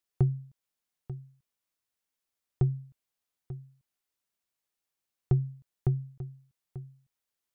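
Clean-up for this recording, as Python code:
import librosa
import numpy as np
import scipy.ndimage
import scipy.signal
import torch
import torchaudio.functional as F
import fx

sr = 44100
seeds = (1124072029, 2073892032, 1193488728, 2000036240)

y = fx.fix_echo_inverse(x, sr, delay_ms=890, level_db=-14.5)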